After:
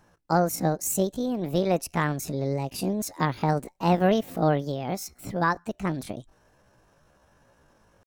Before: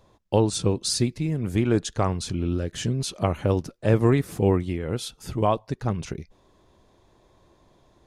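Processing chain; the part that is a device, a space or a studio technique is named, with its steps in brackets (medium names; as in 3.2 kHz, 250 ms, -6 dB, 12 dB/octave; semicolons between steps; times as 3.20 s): chipmunk voice (pitch shift +8 st); trim -2 dB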